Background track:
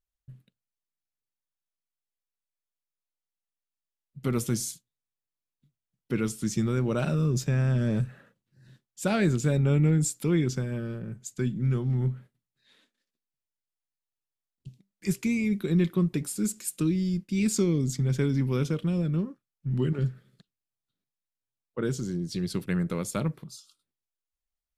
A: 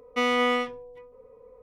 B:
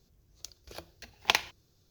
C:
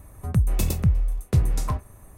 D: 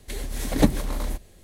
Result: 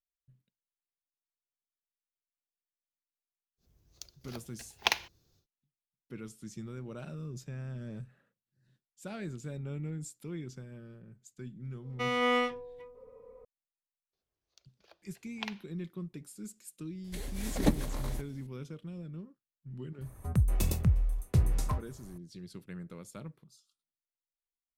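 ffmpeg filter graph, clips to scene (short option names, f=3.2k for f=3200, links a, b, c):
-filter_complex "[2:a]asplit=2[a][b];[0:a]volume=-16dB[c];[1:a]dynaudnorm=f=270:g=3:m=7dB[d];[b]acrossover=split=390 4900:gain=0.141 1 0.178[e][f][g];[e][f][g]amix=inputs=3:normalize=0[h];[a]atrim=end=1.9,asetpts=PTS-STARTPTS,volume=-3dB,afade=t=in:d=0.1,afade=t=out:st=1.8:d=0.1,adelay=157437S[i];[d]atrim=end=1.62,asetpts=PTS-STARTPTS,volume=-9dB,afade=t=in:d=0.004:c=hsin,afade=t=out:st=1.616:d=0.004:c=hsin,adelay=11830[j];[h]atrim=end=1.9,asetpts=PTS-STARTPTS,volume=-13.5dB,afade=t=in:d=0.004:c=hsin,afade=t=out:st=1.896:d=0.004:c=hsin,adelay=14130[k];[4:a]atrim=end=1.43,asetpts=PTS-STARTPTS,volume=-8dB,afade=t=in:d=0.004:c=hsin,afade=t=out:st=1.426:d=0.004:c=hsin,adelay=17040[l];[3:a]atrim=end=2.17,asetpts=PTS-STARTPTS,volume=-6dB,afade=t=in:d=0.004:c=hsin,afade=t=out:st=2.166:d=0.004:c=hsin,adelay=20010[m];[c][i][j][k][l][m]amix=inputs=6:normalize=0"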